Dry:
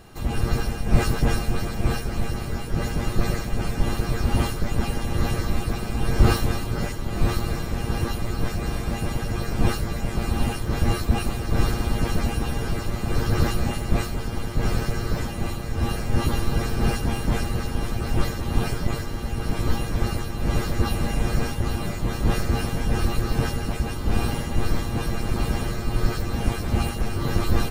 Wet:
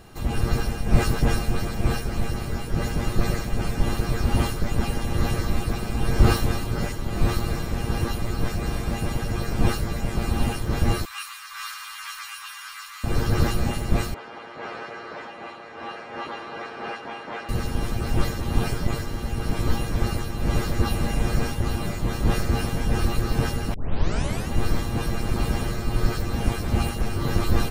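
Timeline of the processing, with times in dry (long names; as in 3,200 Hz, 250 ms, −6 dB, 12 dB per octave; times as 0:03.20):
0:11.05–0:13.04: elliptic high-pass filter 1,100 Hz, stop band 50 dB
0:14.14–0:17.49: band-pass filter 570–2,500 Hz
0:23.74: tape start 0.75 s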